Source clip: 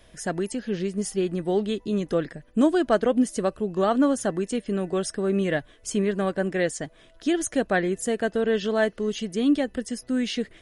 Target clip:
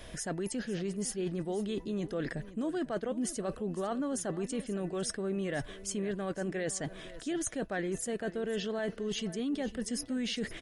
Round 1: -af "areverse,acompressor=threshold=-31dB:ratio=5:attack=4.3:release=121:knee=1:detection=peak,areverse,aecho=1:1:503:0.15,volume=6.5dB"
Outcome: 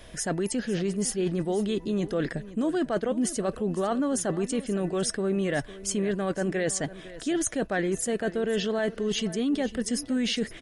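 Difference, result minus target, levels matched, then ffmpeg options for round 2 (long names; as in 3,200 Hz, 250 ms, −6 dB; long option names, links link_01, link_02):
downward compressor: peak gain reduction −7 dB
-af "areverse,acompressor=threshold=-40dB:ratio=5:attack=4.3:release=121:knee=1:detection=peak,areverse,aecho=1:1:503:0.15,volume=6.5dB"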